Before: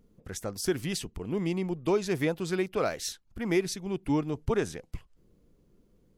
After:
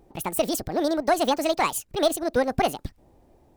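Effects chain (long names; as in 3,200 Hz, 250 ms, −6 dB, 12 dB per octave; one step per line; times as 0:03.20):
one-sided soft clipper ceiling −16 dBFS
wrong playback speed 45 rpm record played at 78 rpm
level +6.5 dB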